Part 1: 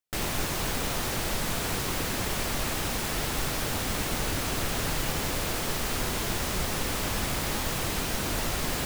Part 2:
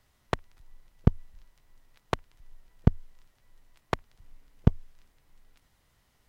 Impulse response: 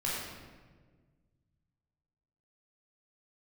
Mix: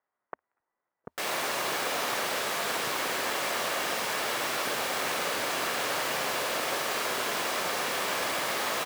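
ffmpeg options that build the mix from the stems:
-filter_complex "[0:a]highshelf=frequency=4000:gain=-7,adelay=1050,volume=0dB,asplit=2[link_01][link_02];[link_02]volume=-5.5dB[link_03];[1:a]lowpass=frequency=1700:width=0.5412,lowpass=frequency=1700:width=1.3066,volume=-9.5dB[link_04];[2:a]atrim=start_sample=2205[link_05];[link_03][link_05]afir=irnorm=-1:irlink=0[link_06];[link_01][link_04][link_06]amix=inputs=3:normalize=0,highpass=500"

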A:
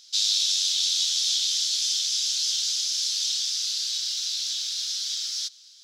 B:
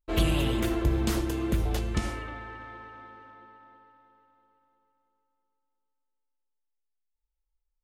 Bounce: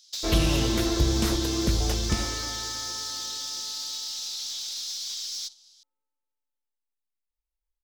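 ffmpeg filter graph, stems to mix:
ffmpeg -i stem1.wav -i stem2.wav -filter_complex "[0:a]highshelf=frequency=2600:gain=11,acompressor=threshold=-21dB:ratio=16,aeval=exprs='0.237*(cos(1*acos(clip(val(0)/0.237,-1,1)))-cos(1*PI/2))+0.0376*(cos(5*acos(clip(val(0)/0.237,-1,1)))-cos(5*PI/2))+0.0119*(cos(6*acos(clip(val(0)/0.237,-1,1)))-cos(6*PI/2))+0.0106*(cos(8*acos(clip(val(0)/0.237,-1,1)))-cos(8*PI/2))':channel_layout=same,volume=-12dB[link_01];[1:a]adelay=150,volume=2dB[link_02];[link_01][link_02]amix=inputs=2:normalize=0,agate=range=-7dB:threshold=-41dB:ratio=16:detection=peak" out.wav

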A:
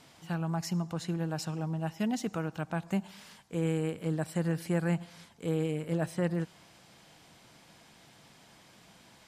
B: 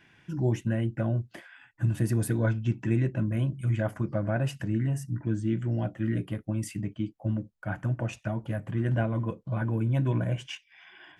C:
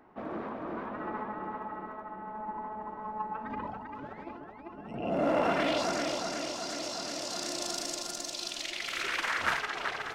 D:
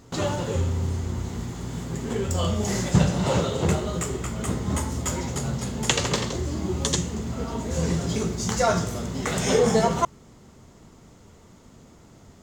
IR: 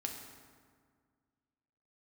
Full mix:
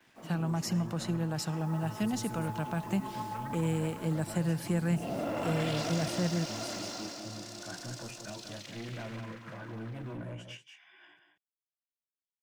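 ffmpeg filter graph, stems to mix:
-filter_complex "[0:a]agate=range=-33dB:threshold=-47dB:ratio=3:detection=peak,volume=2.5dB[link_01];[1:a]highpass=180,flanger=delay=16.5:depth=3.8:speed=0.89,asoftclip=type=tanh:threshold=-32.5dB,volume=-4.5dB,asplit=2[link_02][link_03];[link_03]volume=-7.5dB[link_04];[2:a]acrusher=bits=8:mix=0:aa=0.000001,volume=-2dB,afade=type=in:start_time=1.46:duration=0.32:silence=0.334965,afade=type=out:start_time=6.72:duration=0.55:silence=0.354813,afade=type=out:start_time=8.54:duration=0.73:silence=0.251189,asplit=2[link_05][link_06];[link_06]volume=-6dB[link_07];[link_04][link_07]amix=inputs=2:normalize=0,aecho=0:1:185:1[link_08];[link_01][link_02][link_05][link_08]amix=inputs=4:normalize=0,acrossover=split=190|3000[link_09][link_10][link_11];[link_10]acompressor=threshold=-37dB:ratio=2[link_12];[link_09][link_12][link_11]amix=inputs=3:normalize=0"

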